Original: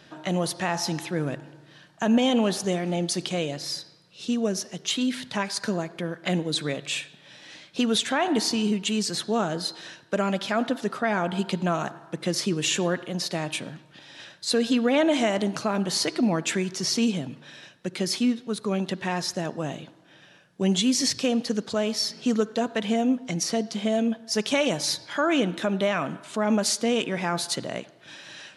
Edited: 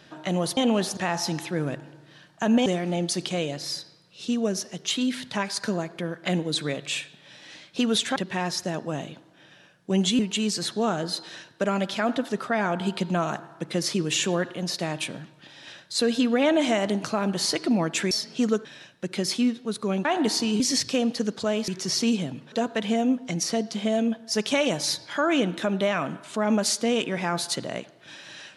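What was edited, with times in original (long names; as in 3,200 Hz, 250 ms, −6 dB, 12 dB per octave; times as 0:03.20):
0:02.26–0:02.66: move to 0:00.57
0:08.16–0:08.71: swap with 0:18.87–0:20.90
0:16.63–0:17.47: swap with 0:21.98–0:22.52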